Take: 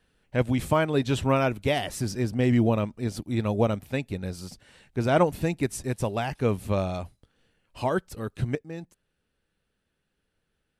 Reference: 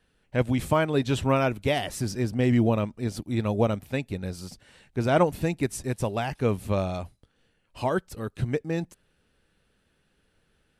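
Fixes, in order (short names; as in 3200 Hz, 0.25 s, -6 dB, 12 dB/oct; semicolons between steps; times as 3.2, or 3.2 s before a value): gain 0 dB, from 8.55 s +9 dB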